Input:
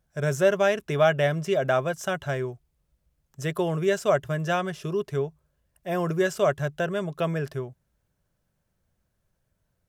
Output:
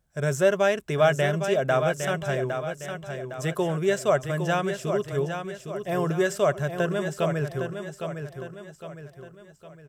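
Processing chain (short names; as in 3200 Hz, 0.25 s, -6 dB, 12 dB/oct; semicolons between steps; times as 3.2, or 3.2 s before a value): bell 7900 Hz +5.5 dB 0.22 oct; feedback echo 0.809 s, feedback 44%, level -7.5 dB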